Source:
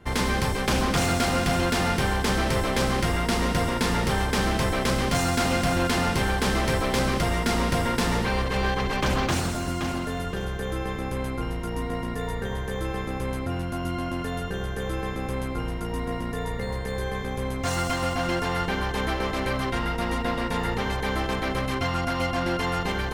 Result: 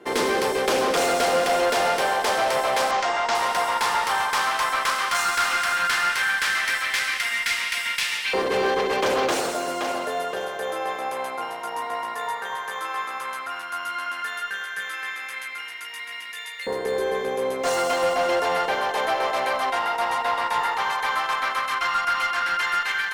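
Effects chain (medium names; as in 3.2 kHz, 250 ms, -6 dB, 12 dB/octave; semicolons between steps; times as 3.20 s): LFO high-pass saw up 0.12 Hz 370–2500 Hz; 2.91–3.35 s: elliptic band-pass 200–6800 Hz; Chebyshev shaper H 3 -12 dB, 5 -15 dB, 6 -31 dB, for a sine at -8 dBFS; trim +2 dB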